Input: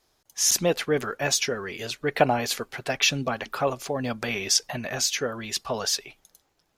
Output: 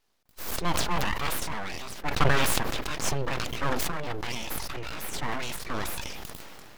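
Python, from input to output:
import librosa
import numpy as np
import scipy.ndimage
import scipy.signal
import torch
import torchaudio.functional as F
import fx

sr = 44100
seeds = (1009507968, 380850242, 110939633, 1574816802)

y = fx.pitch_trill(x, sr, semitones=2.5, every_ms=254)
y = fx.peak_eq(y, sr, hz=8200.0, db=-11.0, octaves=0.89)
y = np.abs(y)
y = fx.sustainer(y, sr, db_per_s=21.0)
y = y * 10.0 ** (-2.0 / 20.0)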